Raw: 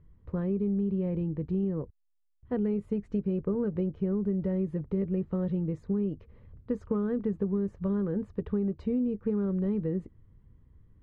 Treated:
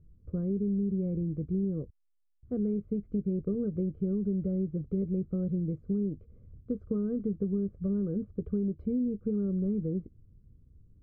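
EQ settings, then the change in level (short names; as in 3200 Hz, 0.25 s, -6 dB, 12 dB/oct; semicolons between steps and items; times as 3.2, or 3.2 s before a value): running mean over 48 samples; 0.0 dB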